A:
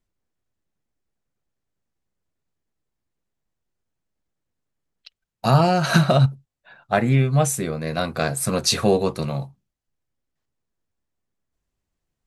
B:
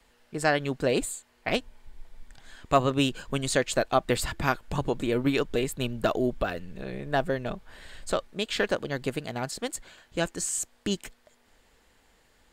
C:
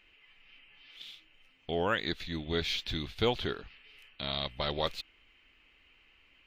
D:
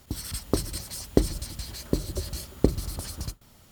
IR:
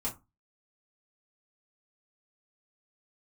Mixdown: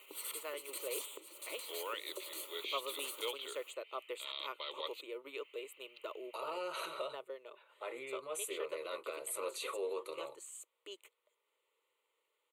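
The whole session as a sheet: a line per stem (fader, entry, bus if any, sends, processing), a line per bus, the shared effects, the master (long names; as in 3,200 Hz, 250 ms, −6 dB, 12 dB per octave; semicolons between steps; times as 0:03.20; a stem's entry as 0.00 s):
−9.0 dB, 0.90 s, bus A, no send, no processing
−14.5 dB, 0.00 s, no bus, no send, no processing
−8.5 dB, 0.00 s, no bus, no send, upward compression, threshold −47 dBFS; spectral tilt +2 dB per octave; noise gate with hold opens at −48 dBFS
0.0 dB, 0.00 s, bus A, no send, downward compressor 16 to 1, threshold −30 dBFS, peak gain reduction 19 dB
bus A: 0.0 dB, pitch vibrato 7.8 Hz 21 cents; brickwall limiter −25 dBFS, peak gain reduction 12.5 dB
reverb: not used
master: high-pass filter 390 Hz 24 dB per octave; phaser with its sweep stopped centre 1,100 Hz, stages 8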